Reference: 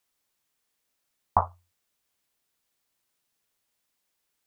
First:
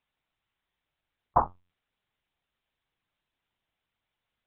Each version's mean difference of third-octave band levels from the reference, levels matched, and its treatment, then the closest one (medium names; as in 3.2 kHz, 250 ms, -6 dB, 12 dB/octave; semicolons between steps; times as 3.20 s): 3.5 dB: LPC vocoder at 8 kHz pitch kept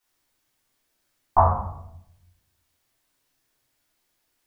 9.0 dB: simulated room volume 170 m³, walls mixed, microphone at 3.5 m; trim -5 dB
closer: first